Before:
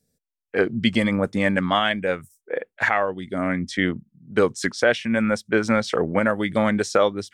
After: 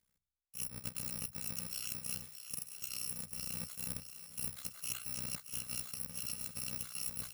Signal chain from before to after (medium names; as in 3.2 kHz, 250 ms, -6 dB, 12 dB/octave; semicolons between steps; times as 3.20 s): bit-reversed sample order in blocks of 128 samples; peaking EQ 720 Hz -8 dB 0.63 oct; de-hum 46.9 Hz, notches 3; reverse; compression 10:1, threshold -30 dBFS, peak gain reduction 17.5 dB; reverse; AM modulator 63 Hz, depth 90%; on a send: thinning echo 623 ms, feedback 56%, high-pass 790 Hz, level -10 dB; on the sum: trim -4 dB